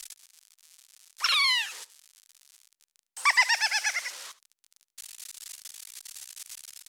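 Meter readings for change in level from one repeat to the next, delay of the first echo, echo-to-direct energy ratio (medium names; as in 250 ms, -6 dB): no regular repeats, 73 ms, -18.5 dB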